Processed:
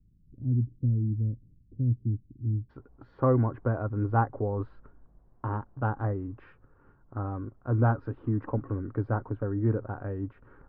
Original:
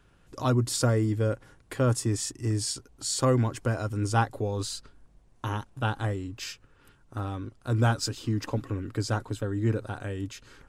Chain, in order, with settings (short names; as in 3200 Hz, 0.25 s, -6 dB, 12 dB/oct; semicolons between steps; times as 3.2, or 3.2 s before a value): inverse Chebyshev low-pass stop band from 1400 Hz, stop band 80 dB, from 2.69 s stop band from 7500 Hz